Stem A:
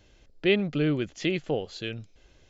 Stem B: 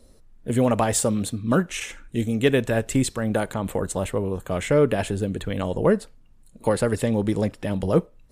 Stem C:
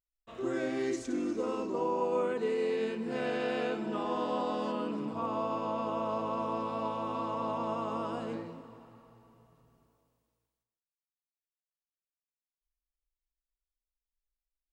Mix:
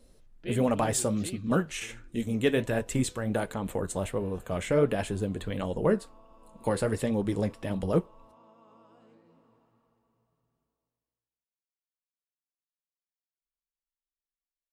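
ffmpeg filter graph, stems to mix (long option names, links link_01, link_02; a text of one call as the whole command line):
ffmpeg -i stem1.wav -i stem2.wav -i stem3.wav -filter_complex "[0:a]volume=-11.5dB,asplit=2[link_01][link_02];[1:a]volume=-1.5dB[link_03];[2:a]acompressor=threshold=-42dB:ratio=5,adelay=800,volume=-9.5dB[link_04];[link_02]apad=whole_len=684524[link_05];[link_04][link_05]sidechaincompress=threshold=-47dB:ratio=8:attack=16:release=917[link_06];[link_01][link_03][link_06]amix=inputs=3:normalize=0,flanger=delay=3.8:depth=7.4:regen=-63:speed=1.4:shape=sinusoidal" out.wav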